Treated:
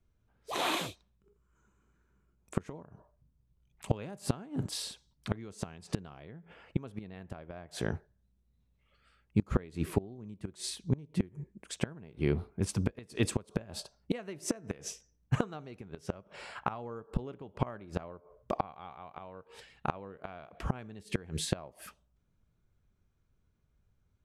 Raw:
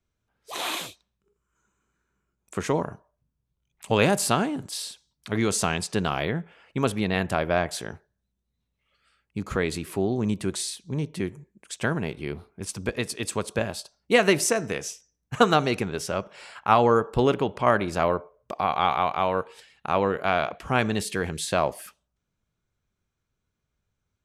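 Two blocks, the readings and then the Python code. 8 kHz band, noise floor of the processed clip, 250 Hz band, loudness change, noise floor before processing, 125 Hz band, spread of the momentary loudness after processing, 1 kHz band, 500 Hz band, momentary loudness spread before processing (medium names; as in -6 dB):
-11.5 dB, -74 dBFS, -8.5 dB, -11.5 dB, -81 dBFS, -5.0 dB, 15 LU, -15.5 dB, -14.5 dB, 15 LU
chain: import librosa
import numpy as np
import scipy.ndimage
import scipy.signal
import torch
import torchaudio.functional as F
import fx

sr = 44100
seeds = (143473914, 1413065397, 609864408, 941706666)

y = fx.tilt_eq(x, sr, slope=-2.0)
y = fx.gate_flip(y, sr, shuts_db=-15.0, range_db=-25)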